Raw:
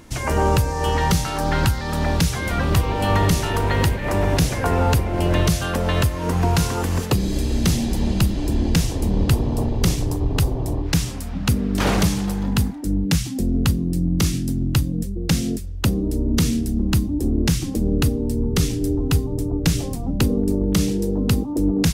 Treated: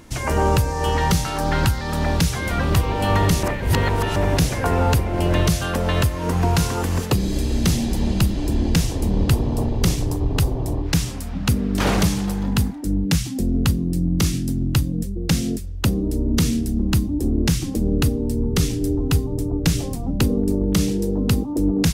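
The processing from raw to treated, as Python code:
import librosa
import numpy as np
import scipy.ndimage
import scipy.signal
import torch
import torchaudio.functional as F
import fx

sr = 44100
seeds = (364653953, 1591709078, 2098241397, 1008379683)

y = fx.edit(x, sr, fx.reverse_span(start_s=3.43, length_s=0.73), tone=tone)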